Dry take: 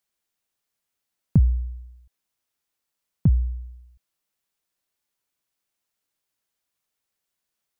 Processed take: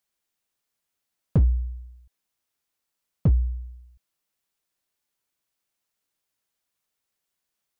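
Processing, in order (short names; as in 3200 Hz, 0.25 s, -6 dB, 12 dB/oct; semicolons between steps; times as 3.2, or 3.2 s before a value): hard clip -14 dBFS, distortion -15 dB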